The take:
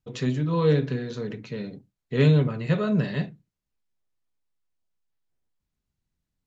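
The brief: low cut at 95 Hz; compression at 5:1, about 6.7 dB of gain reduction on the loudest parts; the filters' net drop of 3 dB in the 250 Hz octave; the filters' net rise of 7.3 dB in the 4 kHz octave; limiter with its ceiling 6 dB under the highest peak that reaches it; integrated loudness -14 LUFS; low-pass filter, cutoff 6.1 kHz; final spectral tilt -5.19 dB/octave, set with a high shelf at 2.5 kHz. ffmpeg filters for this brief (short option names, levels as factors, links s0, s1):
-af "highpass=95,lowpass=6100,equalizer=f=250:t=o:g=-4.5,highshelf=f=2500:g=7,equalizer=f=4000:t=o:g=3.5,acompressor=threshold=0.0708:ratio=5,volume=7.5,alimiter=limit=0.708:level=0:latency=1"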